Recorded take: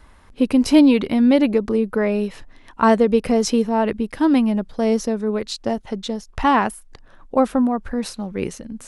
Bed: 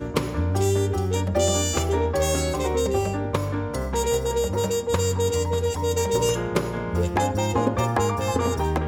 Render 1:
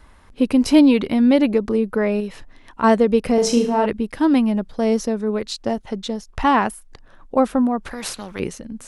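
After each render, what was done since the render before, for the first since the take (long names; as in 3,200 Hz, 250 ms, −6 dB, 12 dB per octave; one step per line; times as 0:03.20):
0:02.20–0:02.84: downward compressor 2 to 1, threshold −24 dBFS
0:03.34–0:03.86: flutter between parallel walls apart 6.5 metres, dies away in 0.45 s
0:07.85–0:08.40: every bin compressed towards the loudest bin 2 to 1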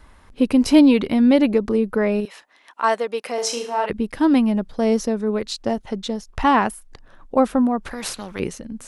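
0:02.25–0:03.90: high-pass filter 680 Hz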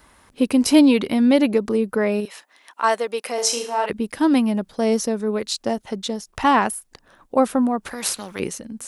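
high-pass filter 150 Hz 6 dB per octave
high-shelf EQ 7,200 Hz +11.5 dB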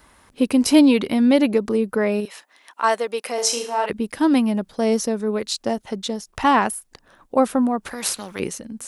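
no processing that can be heard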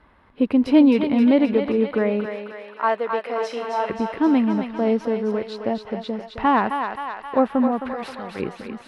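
high-frequency loss of the air 410 metres
feedback echo with a high-pass in the loop 264 ms, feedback 68%, high-pass 580 Hz, level −5 dB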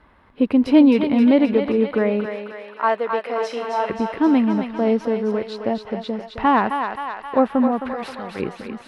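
level +1.5 dB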